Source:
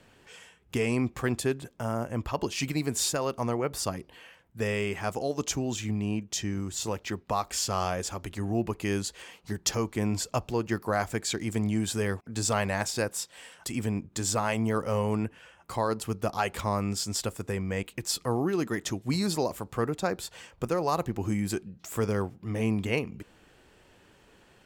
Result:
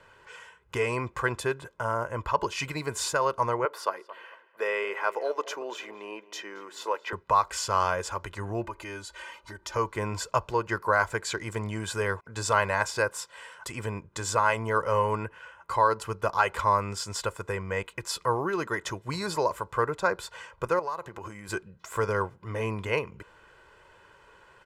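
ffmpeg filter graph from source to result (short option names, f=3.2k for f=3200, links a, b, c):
-filter_complex "[0:a]asettb=1/sr,asplit=3[a][b][c];[a]atrim=end=3.654[d];[b]atrim=start=3.65:end=7.13,asetpts=PTS-STARTPTS,afade=t=in:d=0.004:c=qsin,afade=t=out:st=3.476:d=0.004:c=qsin,highpass=f=330:w=0.5412,highpass=f=330:w=1.3066,equalizer=f=7.5k:t=o:w=1.1:g=-10.5,asplit=2[e][f];[f]adelay=224,lowpass=f=2.4k:p=1,volume=-16dB,asplit=2[g][h];[h]adelay=224,lowpass=f=2.4k:p=1,volume=0.33,asplit=2[i][j];[j]adelay=224,lowpass=f=2.4k:p=1,volume=0.33[k];[e][g][i][k]amix=inputs=4:normalize=0,atrim=end_sample=153468[l];[c]atrim=start=7.126[m];[d][l]acrossfade=d=0.004:c1=hsin:c2=qsin[n];[n][m]acrossfade=d=0.004:c1=qsin:c2=hsin,asettb=1/sr,asplit=3[o][p][q];[o]atrim=end=8.644[r];[p]atrim=start=8.64:end=9.76,asetpts=PTS-STARTPTS,afade=t=in:d=0.004:c=qsin,afade=t=out:st=1.116:d=0.004:c=qsin,aecho=1:1:3.3:0.94,atrim=end_sample=49392,acompressor=threshold=-42dB:ratio=2:attack=3.2:release=140:knee=1:detection=peak[s];[q]atrim=start=9.756[t];[r][s]acrossfade=d=0.004:c1=hsin:c2=qsin[u];[u][t]acrossfade=d=0.004:c1=qsin:c2=hsin,asettb=1/sr,asplit=3[v][w][x];[v]atrim=end=20.794[y];[w]atrim=start=20.79:end=21.49,asetpts=PTS-STARTPTS,afade=t=in:d=0.004:c=qsin,afade=t=out:st=0.696:d=0.004:c=qsin,highpass=f=200:p=1,acompressor=threshold=-33dB:ratio=12:attack=3.2:release=140:knee=1:detection=peak[z];[x]atrim=start=21.486[aa];[y][z]acrossfade=d=0.004:c1=hsin:c2=qsin[ab];[ab][aa]acrossfade=d=0.004:c1=qsin:c2=hsin,lowpass=12k,equalizer=f=1.2k:t=o:w=1.6:g=13.5,aecho=1:1:2:0.61,volume=-5dB"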